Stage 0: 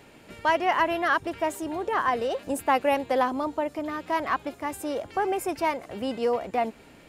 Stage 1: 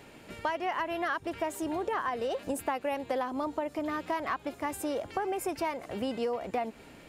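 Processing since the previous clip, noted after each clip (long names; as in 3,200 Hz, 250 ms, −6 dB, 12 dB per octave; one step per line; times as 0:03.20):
downward compressor 10 to 1, threshold −28 dBFS, peak gain reduction 11.5 dB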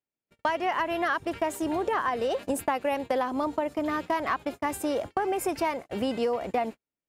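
noise gate −39 dBFS, range −50 dB
level +4.5 dB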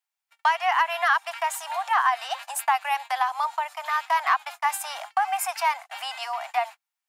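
Butterworth high-pass 730 Hz 72 dB per octave
level +7 dB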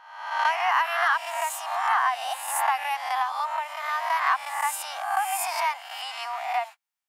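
peak hold with a rise ahead of every peak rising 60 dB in 0.86 s
level −4 dB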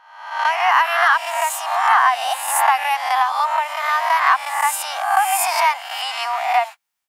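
automatic gain control gain up to 10 dB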